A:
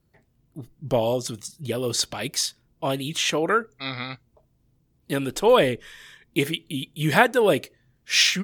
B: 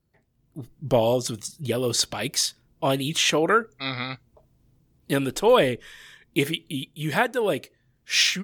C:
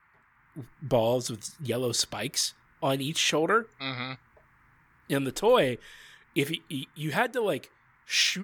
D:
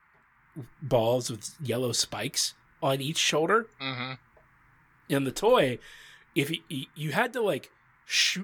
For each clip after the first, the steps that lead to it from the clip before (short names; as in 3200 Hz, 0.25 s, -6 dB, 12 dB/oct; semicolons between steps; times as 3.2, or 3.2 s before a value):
AGC gain up to 9 dB; gain -5.5 dB
band noise 890–2100 Hz -60 dBFS; gain -4 dB
flange 0.28 Hz, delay 4.7 ms, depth 2.7 ms, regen -61%; gain +4.5 dB